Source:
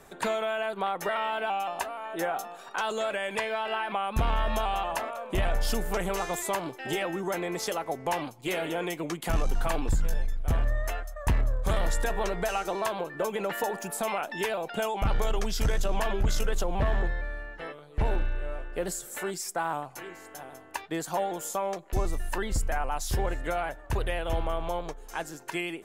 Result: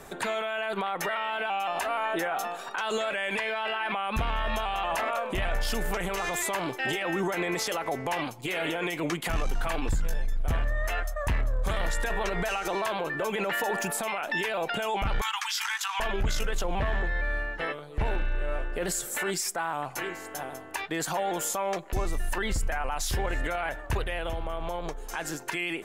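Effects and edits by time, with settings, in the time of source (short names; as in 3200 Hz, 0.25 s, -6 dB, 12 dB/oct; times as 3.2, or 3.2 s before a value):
15.21–16 steep high-pass 840 Hz 96 dB/oct
24.03–25.04 compressor 12:1, threshold -34 dBFS
whole clip: dynamic EQ 2200 Hz, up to +7 dB, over -46 dBFS, Q 0.72; limiter -27 dBFS; gain +6.5 dB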